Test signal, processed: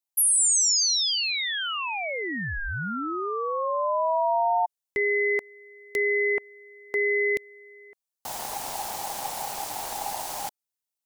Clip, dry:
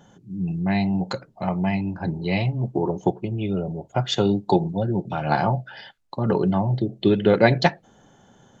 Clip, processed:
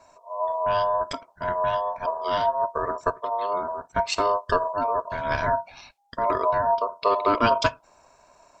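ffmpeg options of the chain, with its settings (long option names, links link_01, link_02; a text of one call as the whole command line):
ffmpeg -i in.wav -af "bass=frequency=250:gain=8,treble=frequency=4000:gain=10,aeval=exprs='val(0)*sin(2*PI*810*n/s)':channel_layout=same,volume=-4dB" out.wav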